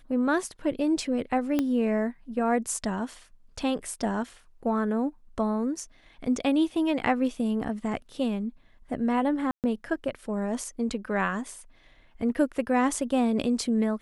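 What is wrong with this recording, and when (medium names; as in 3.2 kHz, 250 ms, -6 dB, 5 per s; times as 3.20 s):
1.59 s: pop -13 dBFS
9.51–9.64 s: dropout 128 ms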